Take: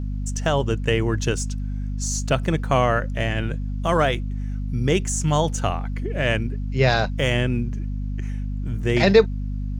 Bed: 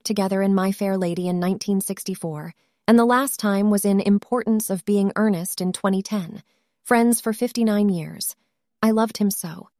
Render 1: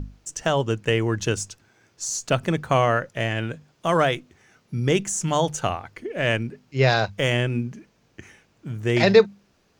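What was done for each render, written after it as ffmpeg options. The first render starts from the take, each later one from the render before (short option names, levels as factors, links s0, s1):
-af "bandreject=f=50:t=h:w=6,bandreject=f=100:t=h:w=6,bandreject=f=150:t=h:w=6,bandreject=f=200:t=h:w=6,bandreject=f=250:t=h:w=6"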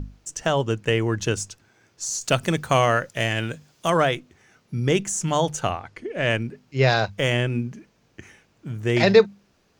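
-filter_complex "[0:a]asettb=1/sr,asplit=3[s0][s1][s2];[s0]atrim=end=2.214[s3];[s1]atrim=start=2.21:end=3.9,asetpts=PTS-STARTPTS,afade=t=in:d=0.004:c=qsin,afade=t=out:st=1.686:d=0.004:c=qsin,highshelf=f=3600:g=11[s4];[s2]atrim=start=3.896[s5];[s3][s4]acrossfade=d=0.004:c1=hsin:c2=qsin[s6];[s6][s5]acrossfade=d=0.004:c1=qsin:c2=hsin,asettb=1/sr,asplit=3[s7][s8][s9];[s7]atrim=end=5.714[s10];[s8]atrim=start=5.71:end=6.3,asetpts=PTS-STARTPTS,afade=t=in:d=0.004:c=qsin,afade=t=out:st=0.586:d=0.004:c=qsin,lowpass=9700[s11];[s9]atrim=start=6.296[s12];[s10][s11]acrossfade=d=0.004:c1=hsin:c2=qsin[s13];[s13][s12]acrossfade=d=0.004:c1=qsin:c2=hsin"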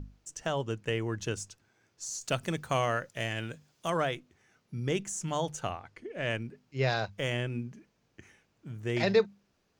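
-af "volume=0.316"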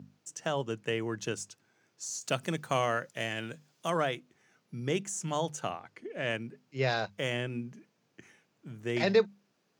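-af "highpass=f=130:w=0.5412,highpass=f=130:w=1.3066"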